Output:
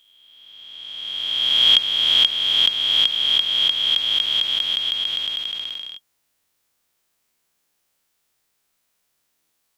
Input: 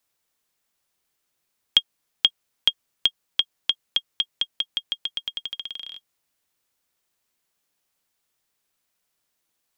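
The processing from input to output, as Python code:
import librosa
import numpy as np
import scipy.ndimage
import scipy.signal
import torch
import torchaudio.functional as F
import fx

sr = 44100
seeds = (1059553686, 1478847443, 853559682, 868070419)

p1 = fx.spec_swells(x, sr, rise_s=2.13)
p2 = fx.rider(p1, sr, range_db=4, speed_s=2.0)
p3 = p1 + (p2 * 10.0 ** (-1.0 / 20.0))
y = p3 * 10.0 ** (-6.0 / 20.0)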